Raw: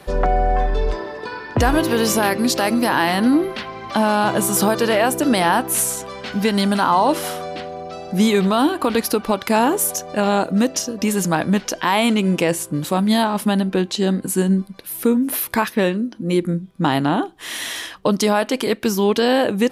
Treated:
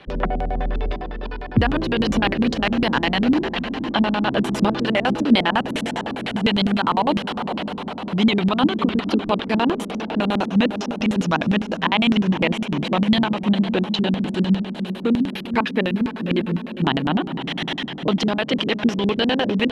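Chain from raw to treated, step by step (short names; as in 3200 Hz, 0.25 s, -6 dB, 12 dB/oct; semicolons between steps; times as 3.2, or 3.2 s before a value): diffused feedback echo 0.502 s, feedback 67%, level -9.5 dB; harmonic-percussive split percussive +6 dB; LFO low-pass square 9.9 Hz 230–3100 Hz; gain -6 dB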